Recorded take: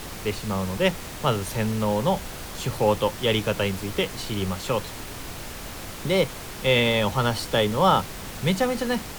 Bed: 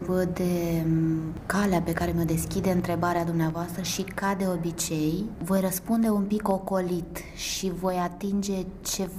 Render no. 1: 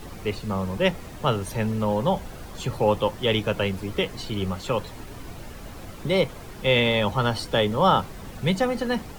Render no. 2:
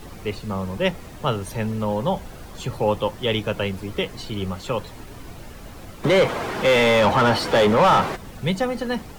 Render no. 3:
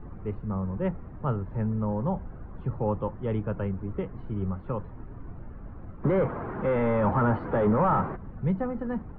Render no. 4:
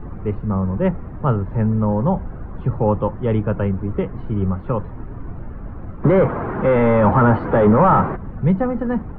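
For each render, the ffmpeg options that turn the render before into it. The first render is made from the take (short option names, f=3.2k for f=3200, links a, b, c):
-af "afftdn=nr=10:nf=-37"
-filter_complex "[0:a]asplit=3[a][b][c];[a]afade=t=out:st=6.03:d=0.02[d];[b]asplit=2[e][f];[f]highpass=f=720:p=1,volume=28dB,asoftclip=type=tanh:threshold=-7.5dB[g];[e][g]amix=inputs=2:normalize=0,lowpass=f=1.4k:p=1,volume=-6dB,afade=t=in:st=6.03:d=0.02,afade=t=out:st=8.15:d=0.02[h];[c]afade=t=in:st=8.15:d=0.02[i];[d][h][i]amix=inputs=3:normalize=0"
-af "lowpass=f=1.3k:w=0.5412,lowpass=f=1.3k:w=1.3066,equalizer=f=660:w=0.59:g=-9.5"
-af "volume=10dB"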